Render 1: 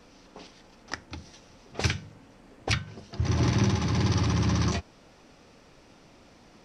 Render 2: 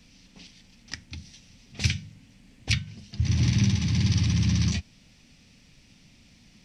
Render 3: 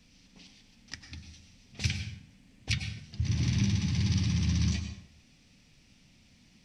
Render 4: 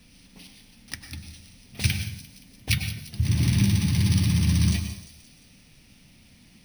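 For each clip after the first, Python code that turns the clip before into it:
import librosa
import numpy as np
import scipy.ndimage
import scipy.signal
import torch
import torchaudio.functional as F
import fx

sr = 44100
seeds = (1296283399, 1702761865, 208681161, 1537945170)

y1 = fx.band_shelf(x, sr, hz=700.0, db=-16.0, octaves=2.6)
y1 = y1 * librosa.db_to_amplitude(2.5)
y2 = fx.rev_plate(y1, sr, seeds[0], rt60_s=0.71, hf_ratio=0.7, predelay_ms=85, drr_db=7.0)
y2 = y2 * librosa.db_to_amplitude(-5.5)
y3 = np.repeat(scipy.signal.resample_poly(y2, 1, 3), 3)[:len(y2)]
y3 = fx.echo_wet_highpass(y3, sr, ms=174, feedback_pct=56, hz=4500.0, wet_db=-11)
y3 = y3 * librosa.db_to_amplitude(6.5)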